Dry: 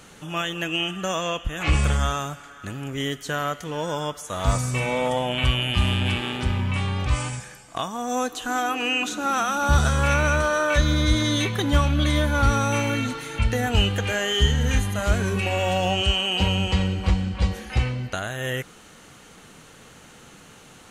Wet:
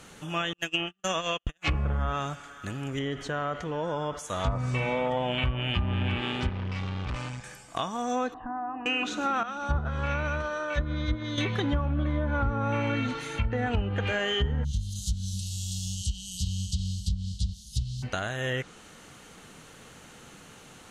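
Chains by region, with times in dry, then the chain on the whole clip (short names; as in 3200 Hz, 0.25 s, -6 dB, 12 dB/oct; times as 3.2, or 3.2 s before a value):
0.53–1.73 gate -27 dBFS, range -47 dB + high shelf 3200 Hz +11 dB
2.99–4.19 LPF 1200 Hz 6 dB/oct + bell 200 Hz -3.5 dB 1.5 oct + fast leveller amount 50%
6.49–7.44 LPF 4900 Hz + tube stage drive 27 dB, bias 0.75
8.34–8.86 compressor 3:1, threshold -31 dBFS + LPF 1300 Hz 24 dB/oct + comb 1.1 ms, depth 75%
9.43–11.38 expander -15 dBFS + upward compressor, threshold -23 dBFS + air absorption 76 m
14.63–18.02 spectral contrast lowered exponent 0.58 + inverse Chebyshev band-stop 310–1900 Hz + fixed phaser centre 1000 Hz, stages 4
whole clip: treble ducked by the level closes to 1200 Hz, closed at -16 dBFS; compressor, threshold -21 dBFS; gain -2 dB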